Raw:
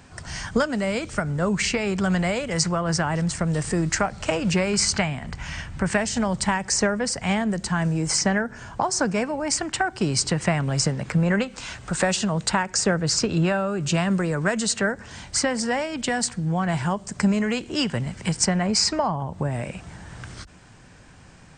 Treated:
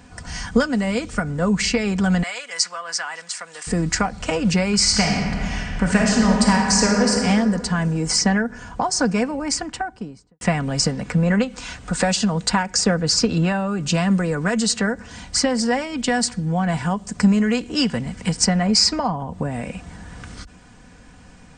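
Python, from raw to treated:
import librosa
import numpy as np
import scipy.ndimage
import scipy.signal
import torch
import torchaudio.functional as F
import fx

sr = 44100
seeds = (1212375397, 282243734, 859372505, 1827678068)

y = fx.highpass(x, sr, hz=1200.0, slope=12, at=(2.23, 3.67))
y = fx.reverb_throw(y, sr, start_s=4.78, length_s=2.36, rt60_s=2.4, drr_db=-0.5)
y = fx.studio_fade_out(y, sr, start_s=9.34, length_s=1.07)
y = fx.low_shelf(y, sr, hz=320.0, db=4.0)
y = y + 0.53 * np.pad(y, (int(4.1 * sr / 1000.0), 0))[:len(y)]
y = fx.dynamic_eq(y, sr, hz=4800.0, q=2.7, threshold_db=-39.0, ratio=4.0, max_db=5)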